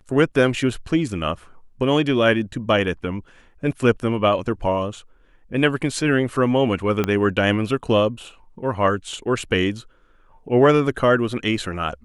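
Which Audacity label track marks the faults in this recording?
7.040000	7.040000	click −8 dBFS

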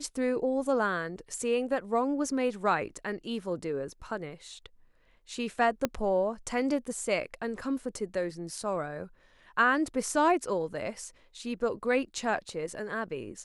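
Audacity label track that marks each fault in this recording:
5.850000	5.850000	click −12 dBFS

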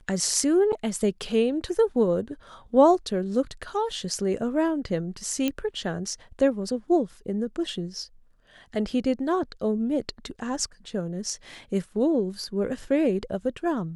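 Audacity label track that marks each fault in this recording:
0.720000	0.730000	drop-out 8.2 ms
5.480000	5.480000	click −12 dBFS

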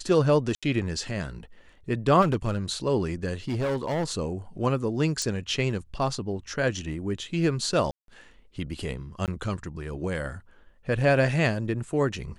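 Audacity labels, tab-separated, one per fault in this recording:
0.550000	0.630000	drop-out 76 ms
2.210000	2.580000	clipping −19.5 dBFS
3.480000	4.130000	clipping −23.5 dBFS
5.220000	5.220000	click −16 dBFS
7.910000	8.080000	drop-out 172 ms
9.260000	9.280000	drop-out 18 ms

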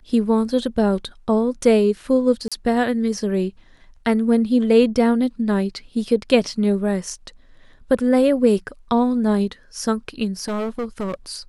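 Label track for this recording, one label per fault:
2.480000	2.520000	drop-out 36 ms
10.400000	11.140000	clipping −21.5 dBFS

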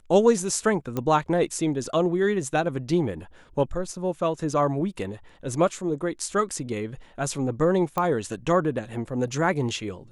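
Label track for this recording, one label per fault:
0.970000	0.970000	click −15 dBFS
7.980000	7.980000	click −12 dBFS

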